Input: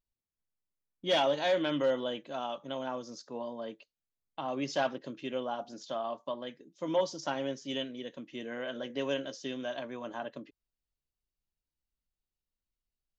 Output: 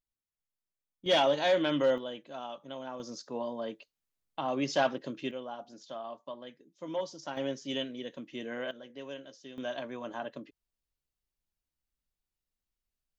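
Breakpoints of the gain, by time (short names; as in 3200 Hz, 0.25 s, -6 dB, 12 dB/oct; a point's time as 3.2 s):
-5 dB
from 1.06 s +2 dB
from 1.98 s -4.5 dB
from 3 s +3 dB
from 5.31 s -5.5 dB
from 7.37 s +1 dB
from 8.71 s -10 dB
from 9.58 s +0.5 dB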